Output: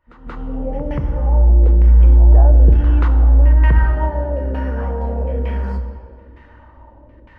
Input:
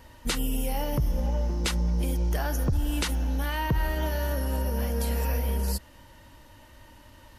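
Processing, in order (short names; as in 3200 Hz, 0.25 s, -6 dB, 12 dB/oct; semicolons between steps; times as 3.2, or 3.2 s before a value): opening faded in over 0.74 s; LFO low-pass saw down 1.1 Hz 390–2200 Hz; pre-echo 0.181 s -12.5 dB; on a send at -8 dB: reverb RT60 2.0 s, pre-delay 23 ms; on the sum: gain +3.5 dB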